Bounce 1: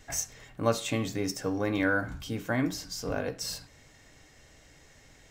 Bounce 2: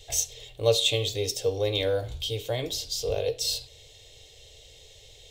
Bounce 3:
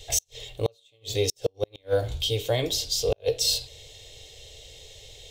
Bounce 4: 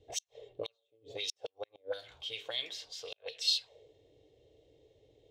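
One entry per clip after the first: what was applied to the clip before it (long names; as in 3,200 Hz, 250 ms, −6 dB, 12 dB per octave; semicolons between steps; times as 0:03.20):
drawn EQ curve 110 Hz 0 dB, 230 Hz −27 dB, 450 Hz +5 dB, 1,500 Hz −21 dB, 3,500 Hz +13 dB, 5,100 Hz +1 dB; level +4.5 dB
gate with flip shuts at −16 dBFS, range −40 dB; level +4.5 dB
envelope filter 230–3,600 Hz, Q 2.6, up, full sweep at −20.5 dBFS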